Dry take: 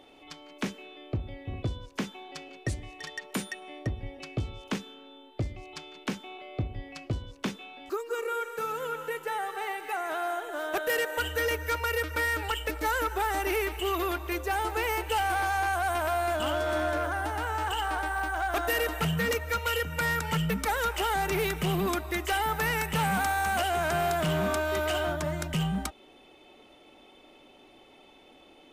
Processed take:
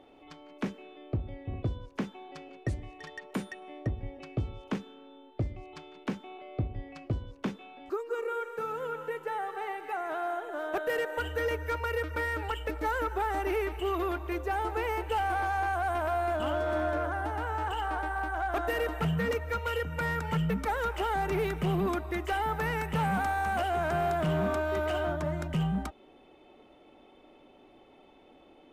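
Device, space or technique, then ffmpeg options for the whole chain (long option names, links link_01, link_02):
through cloth: -af "highshelf=frequency=2500:gain=-14"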